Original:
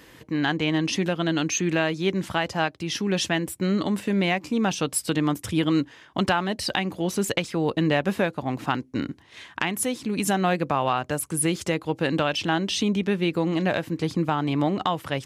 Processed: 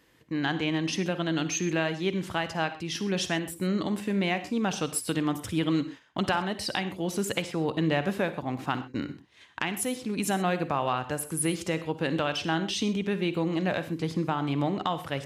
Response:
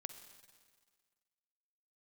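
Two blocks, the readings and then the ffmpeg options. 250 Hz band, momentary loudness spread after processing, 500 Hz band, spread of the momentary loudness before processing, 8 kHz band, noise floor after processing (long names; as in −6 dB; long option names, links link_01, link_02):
−4.0 dB, 4 LU, −4.0 dB, 5 LU, −4.0 dB, −55 dBFS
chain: -filter_complex "[0:a]agate=range=-9dB:threshold=-41dB:ratio=16:detection=peak[link_01];[1:a]atrim=start_sample=2205,afade=type=out:start_time=0.18:duration=0.01,atrim=end_sample=8379[link_02];[link_01][link_02]afir=irnorm=-1:irlink=0"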